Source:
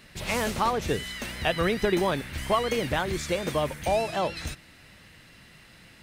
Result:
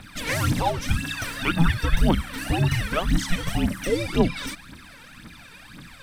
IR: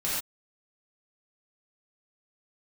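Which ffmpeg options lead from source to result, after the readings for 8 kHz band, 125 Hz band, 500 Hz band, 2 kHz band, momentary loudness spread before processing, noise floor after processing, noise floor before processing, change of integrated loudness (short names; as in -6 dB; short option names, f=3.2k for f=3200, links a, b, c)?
+3.5 dB, +10.0 dB, -2.5 dB, +3.0 dB, 6 LU, -46 dBFS, -53 dBFS, +3.0 dB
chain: -filter_complex "[0:a]bandreject=f=7.3k:w=16,asplit=2[a][b];[b]acompressor=threshold=-35dB:ratio=6,volume=0dB[c];[a][c]amix=inputs=2:normalize=0,afreqshift=-340,aphaser=in_gain=1:out_gain=1:delay=2.3:decay=0.73:speed=1.9:type=triangular,volume=-2dB"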